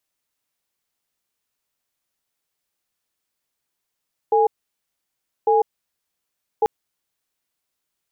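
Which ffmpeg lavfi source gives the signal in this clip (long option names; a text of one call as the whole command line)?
ffmpeg -f lavfi -i "aevalsrc='0.158*(sin(2*PI*444*t)+sin(2*PI*826*t))*clip(min(mod(t,1.15),0.15-mod(t,1.15))/0.005,0,1)':duration=2.34:sample_rate=44100" out.wav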